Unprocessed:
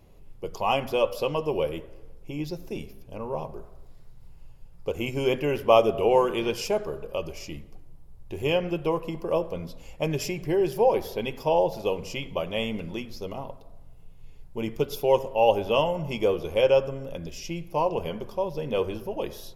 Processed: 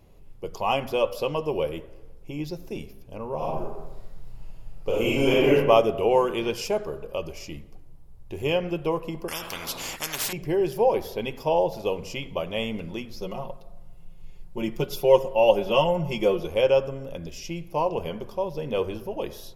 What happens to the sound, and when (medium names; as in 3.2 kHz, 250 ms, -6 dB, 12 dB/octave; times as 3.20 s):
3.36–5.52 s: reverb throw, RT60 0.91 s, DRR -6.5 dB
9.28–10.33 s: spectrum-flattening compressor 10:1
13.17–16.47 s: comb 5.6 ms, depth 75%